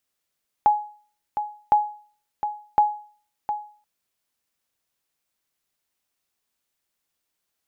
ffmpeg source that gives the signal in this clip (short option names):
-f lavfi -i "aevalsrc='0.335*(sin(2*PI*838*mod(t,1.06))*exp(-6.91*mod(t,1.06)/0.44)+0.335*sin(2*PI*838*max(mod(t,1.06)-0.71,0))*exp(-6.91*max(mod(t,1.06)-0.71,0)/0.44))':d=3.18:s=44100"